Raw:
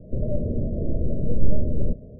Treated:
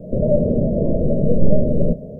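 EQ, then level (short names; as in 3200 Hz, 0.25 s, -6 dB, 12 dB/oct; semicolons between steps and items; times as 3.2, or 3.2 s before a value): EQ curve 110 Hz 0 dB, 160 Hz +11 dB, 340 Hz +6 dB, 540 Hz +13 dB; +1.5 dB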